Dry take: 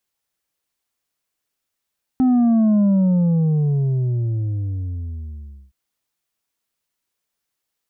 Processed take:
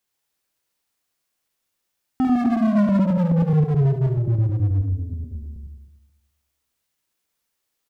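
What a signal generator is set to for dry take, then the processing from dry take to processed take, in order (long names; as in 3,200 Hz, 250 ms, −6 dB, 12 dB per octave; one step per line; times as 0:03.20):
bass drop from 260 Hz, over 3.52 s, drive 4.5 dB, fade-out 2.91 s, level −13 dB
feedback delay that plays each chunk backwards 107 ms, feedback 51%, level −3 dB
hard clipping −17 dBFS
single-tap delay 72 ms −8 dB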